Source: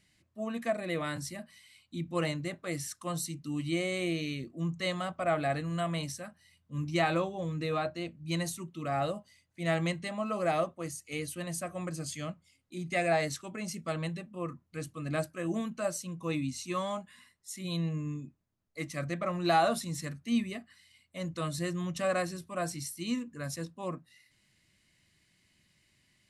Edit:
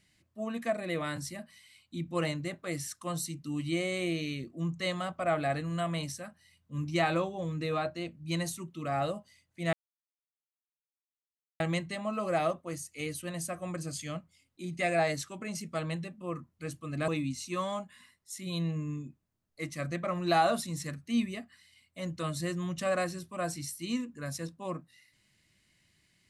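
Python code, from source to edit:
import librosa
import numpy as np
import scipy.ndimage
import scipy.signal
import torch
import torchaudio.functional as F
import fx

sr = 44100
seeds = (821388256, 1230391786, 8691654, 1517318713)

y = fx.edit(x, sr, fx.insert_silence(at_s=9.73, length_s=1.87),
    fx.cut(start_s=15.21, length_s=1.05), tone=tone)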